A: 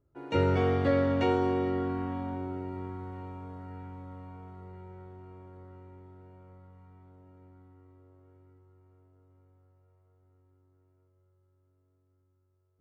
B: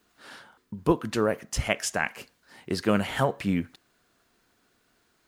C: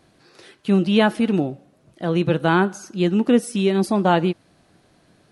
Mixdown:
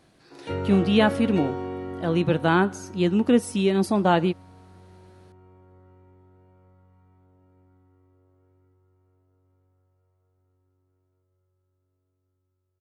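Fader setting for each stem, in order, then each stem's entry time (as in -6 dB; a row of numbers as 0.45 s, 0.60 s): -4.0 dB, mute, -2.5 dB; 0.15 s, mute, 0.00 s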